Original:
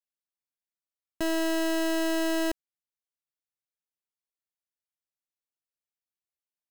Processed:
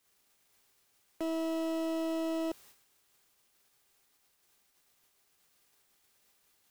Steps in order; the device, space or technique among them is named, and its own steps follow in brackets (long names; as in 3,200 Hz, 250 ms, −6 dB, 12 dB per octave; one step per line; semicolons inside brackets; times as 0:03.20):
aircraft radio (band-pass filter 310–2,300 Hz; hard clipping −31.5 dBFS, distortion −7 dB; hum with harmonics 400 Hz, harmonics 36, −72 dBFS −1 dB per octave; white noise bed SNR 19 dB; noise gate −58 dBFS, range −17 dB)
level +2 dB